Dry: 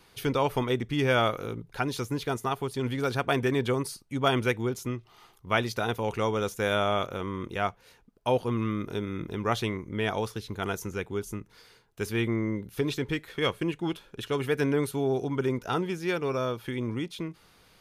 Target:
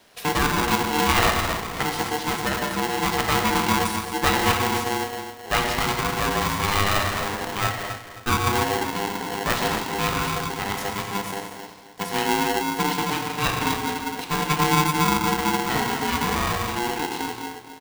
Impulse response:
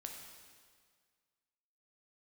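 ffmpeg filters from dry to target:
-filter_complex "[0:a]asplit=2[s0][s1];[s1]adelay=264,lowpass=f=2000:p=1,volume=0.335,asplit=2[s2][s3];[s3]adelay=264,lowpass=f=2000:p=1,volume=0.35,asplit=2[s4][s5];[s5]adelay=264,lowpass=f=2000:p=1,volume=0.35,asplit=2[s6][s7];[s7]adelay=264,lowpass=f=2000:p=1,volume=0.35[s8];[s0][s2][s4][s6][s8]amix=inputs=5:normalize=0[s9];[1:a]atrim=start_sample=2205,afade=t=out:st=0.21:d=0.01,atrim=end_sample=9702,asetrate=24255,aresample=44100[s10];[s9][s10]afir=irnorm=-1:irlink=0,aeval=exprs='val(0)*sgn(sin(2*PI*600*n/s))':c=same,volume=1.78"

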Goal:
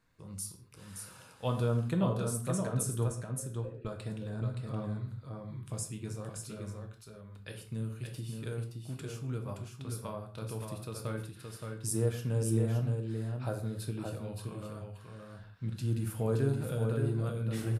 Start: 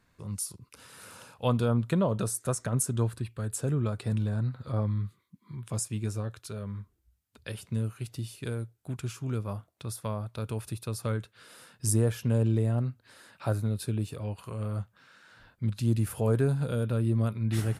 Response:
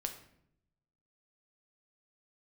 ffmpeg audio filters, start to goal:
-filter_complex "[0:a]asettb=1/sr,asplit=3[s0][s1][s2];[s0]atrim=end=3.084[s3];[s1]atrim=start=3.08:end=3.85,asetpts=PTS-STARTPTS,afade=t=in:d=0.004:c=qsin,afade=t=out:st=0.766:d=0.004:c=qsin,asplit=3[s4][s5][s6];[s4]bandpass=f=530:t=q:w=8,volume=1[s7];[s5]bandpass=f=1840:t=q:w=8,volume=0.501[s8];[s6]bandpass=f=2480:t=q:w=8,volume=0.355[s9];[s7][s8][s9]amix=inputs=3:normalize=0[s10];[s2]atrim=start=3.846[s11];[s3][s10]acrossfade=d=0.004:c1=hsin:c2=qsin[s12];[s12][s11]acrossfade=d=0.004:c1=qsin:c2=hsin,aecho=1:1:571:0.562[s13];[1:a]atrim=start_sample=2205,afade=t=out:st=0.21:d=0.01,atrim=end_sample=9702[s14];[s13][s14]afir=irnorm=-1:irlink=0,volume=0.562"

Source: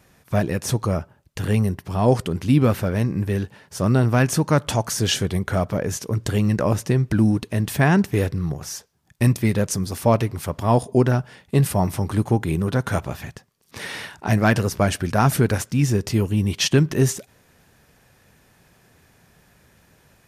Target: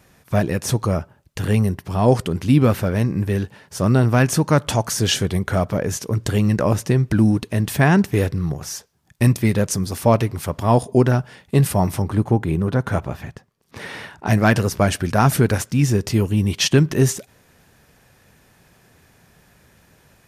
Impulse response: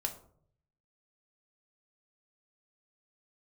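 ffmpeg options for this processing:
-filter_complex "[0:a]asettb=1/sr,asplit=3[s0][s1][s2];[s0]atrim=end=12.024[s3];[s1]atrim=start=12.02:end=14.26,asetpts=PTS-STARTPTS,afade=t=in:d=0.004:c=qsin,afade=t=out:st=2.236:d=0.004:c=qsin,highshelf=f=2700:g=-9.5[s4];[s2]atrim=start=14.256[s5];[s3][s4]acrossfade=d=0.004:c1=hsin:c2=qsin[s6];[s6][s5]acrossfade=d=0.004:c1=qsin:c2=hsin,volume=1.26"

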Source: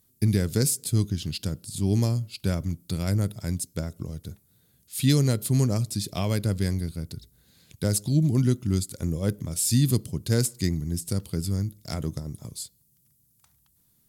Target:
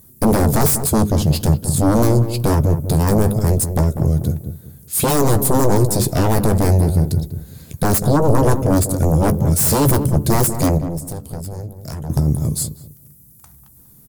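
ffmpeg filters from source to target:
-filter_complex "[0:a]aeval=exprs='0.376*sin(PI/2*7.08*val(0)/0.376)':c=same,equalizer=f=3400:t=o:w=2.2:g=-12.5,asettb=1/sr,asplit=3[s0][s1][s2];[s0]atrim=end=10.784[s3];[s1]atrim=start=10.78:end=12.1,asetpts=PTS-STARTPTS,afade=t=in:d=0.004:c=qsin,afade=t=out:st=1.316:d=0.004:c=qsin,acompressor=threshold=0.0501:ratio=6[s4];[s2]atrim=start=12.096[s5];[s3][s4]acrossfade=d=0.004:c1=hsin:c2=qsin[s6];[s6][s5]acrossfade=d=0.004:c1=qsin:c2=hsin,asplit=2[s7][s8];[s8]adelay=14,volume=0.266[s9];[s7][s9]amix=inputs=2:normalize=0,asplit=2[s10][s11];[s11]adelay=194,lowpass=f=830:p=1,volume=0.398,asplit=2[s12][s13];[s13]adelay=194,lowpass=f=830:p=1,volume=0.28,asplit=2[s14][s15];[s15]adelay=194,lowpass=f=830:p=1,volume=0.28[s16];[s10][s12][s14][s16]amix=inputs=4:normalize=0,volume=0.841"

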